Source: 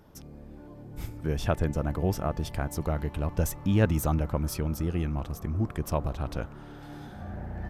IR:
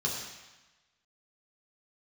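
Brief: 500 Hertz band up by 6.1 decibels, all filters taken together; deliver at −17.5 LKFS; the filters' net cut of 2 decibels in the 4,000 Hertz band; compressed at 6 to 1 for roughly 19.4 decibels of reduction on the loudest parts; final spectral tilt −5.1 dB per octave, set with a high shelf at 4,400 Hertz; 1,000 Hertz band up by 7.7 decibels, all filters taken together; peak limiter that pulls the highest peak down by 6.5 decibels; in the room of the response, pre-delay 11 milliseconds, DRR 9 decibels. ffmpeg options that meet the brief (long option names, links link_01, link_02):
-filter_complex "[0:a]equalizer=frequency=500:width_type=o:gain=5,equalizer=frequency=1000:width_type=o:gain=8.5,equalizer=frequency=4000:width_type=o:gain=-8,highshelf=frequency=4400:gain=7,acompressor=threshold=-37dB:ratio=6,alimiter=level_in=7dB:limit=-24dB:level=0:latency=1,volume=-7dB,asplit=2[link_01][link_02];[1:a]atrim=start_sample=2205,adelay=11[link_03];[link_02][link_03]afir=irnorm=-1:irlink=0,volume=-15.5dB[link_04];[link_01][link_04]amix=inputs=2:normalize=0,volume=24.5dB"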